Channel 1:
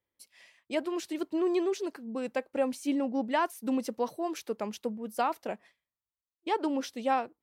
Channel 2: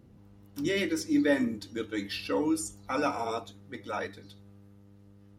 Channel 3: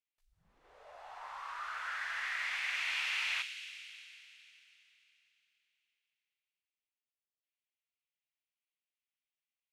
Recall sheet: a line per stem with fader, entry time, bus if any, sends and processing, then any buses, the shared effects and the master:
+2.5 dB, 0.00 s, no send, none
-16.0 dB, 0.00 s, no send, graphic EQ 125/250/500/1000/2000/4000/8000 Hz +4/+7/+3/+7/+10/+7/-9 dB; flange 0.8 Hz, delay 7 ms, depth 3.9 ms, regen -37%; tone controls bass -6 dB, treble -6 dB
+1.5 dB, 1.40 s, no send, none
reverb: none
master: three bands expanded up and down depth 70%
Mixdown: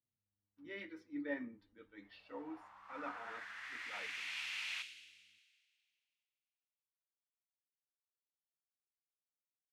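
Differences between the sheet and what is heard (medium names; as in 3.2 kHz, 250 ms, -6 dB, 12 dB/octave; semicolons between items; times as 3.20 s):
stem 1: muted; stem 2 -16.0 dB -> -23.0 dB; stem 3 +1.5 dB -> -10.0 dB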